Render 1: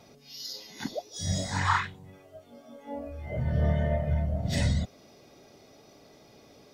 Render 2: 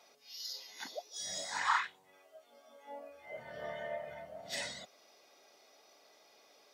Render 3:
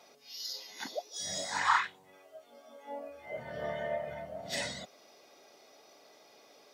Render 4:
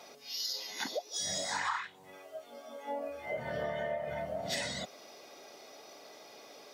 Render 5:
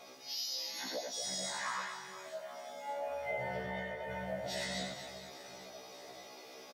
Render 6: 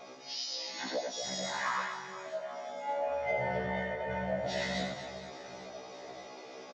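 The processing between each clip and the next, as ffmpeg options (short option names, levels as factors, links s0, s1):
-af "highpass=700,volume=0.631"
-af "lowshelf=f=460:g=7.5,volume=1.41"
-af "acompressor=threshold=0.0112:ratio=6,volume=2.11"
-af "alimiter=level_in=1.88:limit=0.0631:level=0:latency=1:release=111,volume=0.531,aecho=1:1:90|234|464.4|833|1423:0.631|0.398|0.251|0.158|0.1,afftfilt=real='re*1.73*eq(mod(b,3),0)':imag='im*1.73*eq(mod(b,3),0)':win_size=2048:overlap=0.75,volume=1.12"
-filter_complex "[0:a]asplit=2[s0][s1];[s1]adynamicsmooth=sensitivity=7:basefreq=2700,volume=1[s2];[s0][s2]amix=inputs=2:normalize=0,aresample=16000,aresample=44100"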